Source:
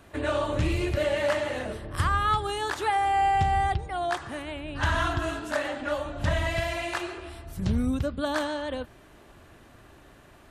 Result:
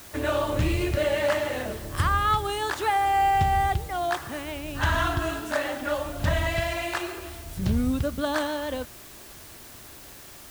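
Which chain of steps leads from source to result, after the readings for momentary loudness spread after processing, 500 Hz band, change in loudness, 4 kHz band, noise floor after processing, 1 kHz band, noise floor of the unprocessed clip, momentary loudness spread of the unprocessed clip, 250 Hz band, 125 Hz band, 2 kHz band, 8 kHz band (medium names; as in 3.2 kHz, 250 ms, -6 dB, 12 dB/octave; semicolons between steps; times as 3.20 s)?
20 LU, +1.5 dB, +1.5 dB, +2.0 dB, -46 dBFS, +1.5 dB, -53 dBFS, 11 LU, +1.5 dB, +1.5 dB, +1.5 dB, +4.5 dB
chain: word length cut 8-bit, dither triangular; trim +1.5 dB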